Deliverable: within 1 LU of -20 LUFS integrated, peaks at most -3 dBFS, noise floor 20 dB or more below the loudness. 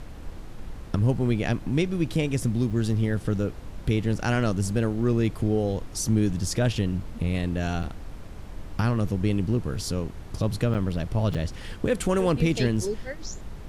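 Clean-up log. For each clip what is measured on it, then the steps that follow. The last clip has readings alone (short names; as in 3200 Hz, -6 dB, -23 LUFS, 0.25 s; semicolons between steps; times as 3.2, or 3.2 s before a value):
dropouts 4; longest dropout 6.5 ms; noise floor -40 dBFS; noise floor target -47 dBFS; loudness -26.5 LUFS; peak -10.0 dBFS; loudness target -20.0 LUFS
-> interpolate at 2.7/7.83/10.74/11.34, 6.5 ms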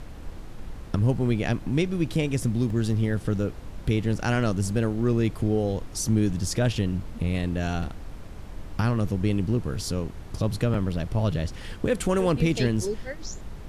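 dropouts 0; noise floor -40 dBFS; noise floor target -47 dBFS
-> noise print and reduce 7 dB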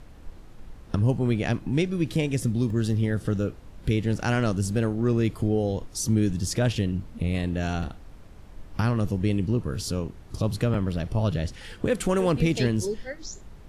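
noise floor -46 dBFS; noise floor target -47 dBFS
-> noise print and reduce 6 dB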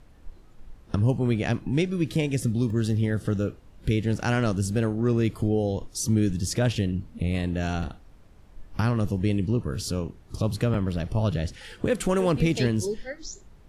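noise floor -52 dBFS; loudness -26.5 LUFS; peak -10.5 dBFS; loudness target -20.0 LUFS
-> gain +6.5 dB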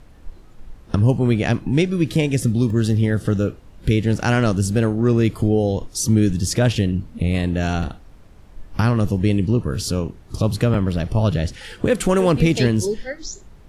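loudness -20.0 LUFS; peak -4.0 dBFS; noise floor -45 dBFS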